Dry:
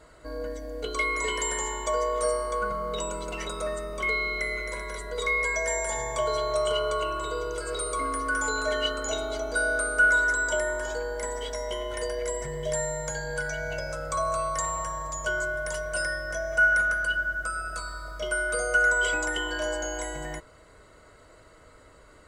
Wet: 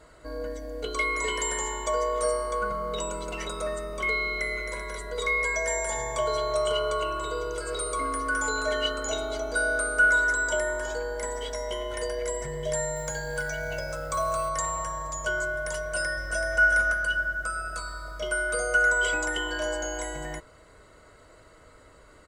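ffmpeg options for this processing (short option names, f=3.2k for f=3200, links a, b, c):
-filter_complex "[0:a]asettb=1/sr,asplit=3[a][b][c];[a]atrim=end=12.964[d];[b]atrim=start=12.96:end=14.49,asetpts=PTS-STARTPTS,afade=t=in:d=0.004:c=qsin,afade=t=out:st=1.526:d=0.004:c=qsin,acrusher=bits=6:mode=log:mix=0:aa=0.000001[e];[c]atrim=start=14.486[f];[d][e]acrossfade=d=0.004:c1=hsin:c2=qsin[g];[g][f]acrossfade=d=0.004:c1=qsin:c2=hsin,asplit=2[h][i];[i]afade=t=in:st=15.79:d=0.01,afade=t=out:st=16.54:d=0.01,aecho=0:1:380|760|1140|1520:0.562341|0.168702|0.0506107|0.0151832[j];[h][j]amix=inputs=2:normalize=0"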